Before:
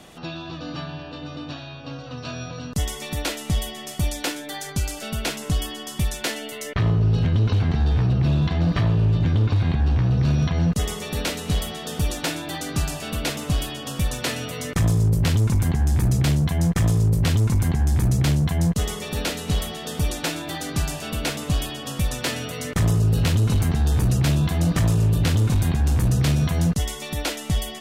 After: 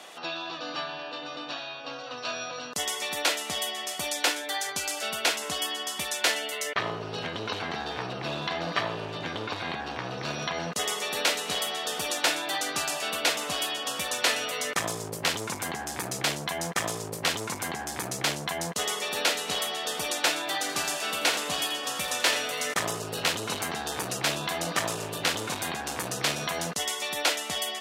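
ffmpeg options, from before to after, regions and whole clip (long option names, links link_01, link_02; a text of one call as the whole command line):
ffmpeg -i in.wav -filter_complex "[0:a]asettb=1/sr,asplit=3[link_01][link_02][link_03];[link_01]atrim=end=20.594[link_04];[link_02]atrim=start=20.59:end=22.74,asetpts=PTS-STARTPTS,afade=type=in:duration=0.004:curve=qsin,afade=type=out:start_time=2.146:duration=0.004:curve=qsin,asplit=2[link_05][link_06];[link_06]adelay=31,volume=-12.5dB[link_07];[link_05][link_07]amix=inputs=2:normalize=0,atrim=end_sample=94815,aecho=1:1:84:0.282,atrim=end_sample=94815[link_08];[link_03]atrim=start=22.736[link_09];[link_04][link_08]acrossfade=duration=0.004:curve1=hsin:curve2=qsin[link_10];[link_10][link_09]acrossfade=duration=0.004:curve1=qsin:curve2=hsin,highpass=590,highshelf=frequency=11000:gain=-6.5,volume=3.5dB" out.wav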